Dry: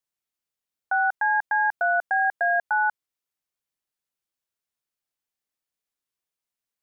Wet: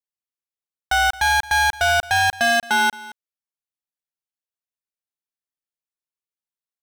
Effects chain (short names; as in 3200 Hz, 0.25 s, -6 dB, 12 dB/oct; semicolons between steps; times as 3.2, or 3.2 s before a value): sample leveller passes 5; on a send: echo 0.22 s -19 dB